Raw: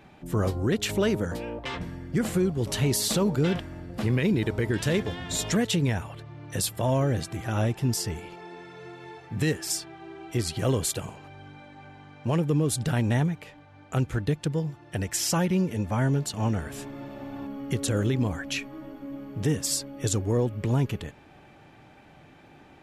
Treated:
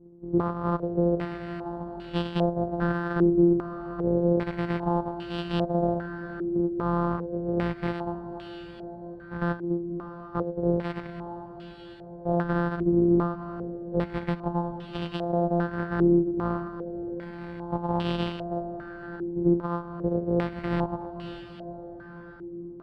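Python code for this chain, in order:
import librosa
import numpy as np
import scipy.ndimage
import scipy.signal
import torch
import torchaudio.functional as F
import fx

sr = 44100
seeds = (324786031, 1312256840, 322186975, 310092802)

p1 = np.r_[np.sort(x[:len(x) // 256 * 256].reshape(-1, 256), axis=1).ravel(), x[len(x) // 256 * 256:]]
p2 = p1 + 0.83 * np.pad(p1, (int(5.6 * sr / 1000.0), 0))[:len(p1)]
p3 = p2 + fx.echo_diffused(p2, sr, ms=543, feedback_pct=65, wet_db=-11.0, dry=0)
p4 = fx.filter_held_lowpass(p3, sr, hz=2.5, low_hz=360.0, high_hz=2900.0)
y = F.gain(torch.from_numpy(p4), -8.0).numpy()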